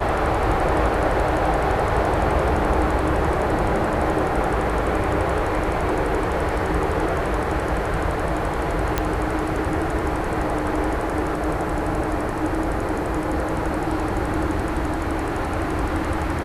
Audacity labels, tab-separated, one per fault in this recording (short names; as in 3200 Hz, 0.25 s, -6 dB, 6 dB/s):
8.980000	8.980000	pop -6 dBFS